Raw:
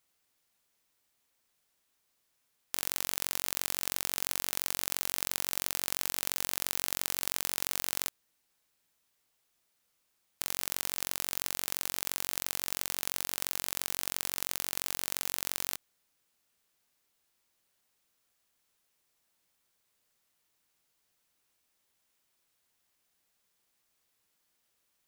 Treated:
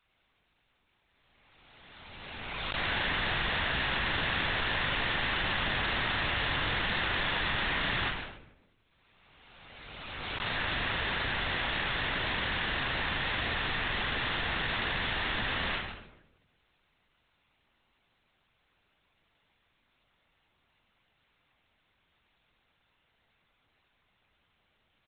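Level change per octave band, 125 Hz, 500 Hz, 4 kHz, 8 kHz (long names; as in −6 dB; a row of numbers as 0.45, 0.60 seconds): +15.0 dB, +8.5 dB, +6.0 dB, below −40 dB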